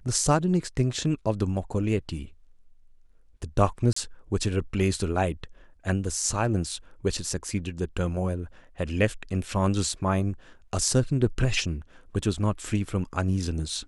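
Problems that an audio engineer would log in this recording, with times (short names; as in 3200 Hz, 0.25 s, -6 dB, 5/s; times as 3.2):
3.93–3.96 gap 34 ms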